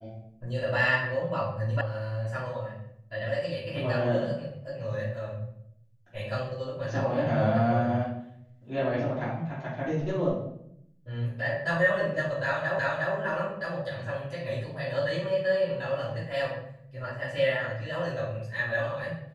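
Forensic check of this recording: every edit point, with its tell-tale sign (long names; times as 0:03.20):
0:01.81: cut off before it has died away
0:12.79: the same again, the last 0.36 s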